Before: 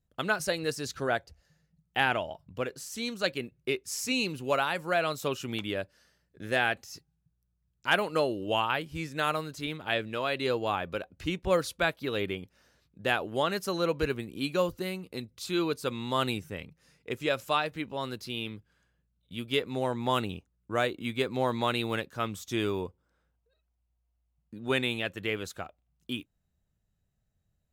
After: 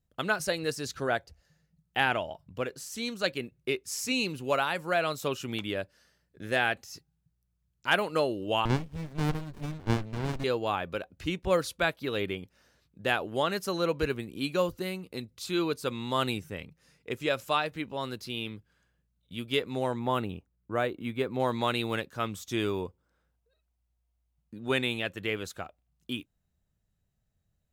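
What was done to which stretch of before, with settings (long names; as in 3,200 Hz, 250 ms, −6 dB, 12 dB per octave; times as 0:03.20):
0:08.65–0:10.44: windowed peak hold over 65 samples
0:19.99–0:21.40: parametric band 6,000 Hz −10.5 dB 2.2 octaves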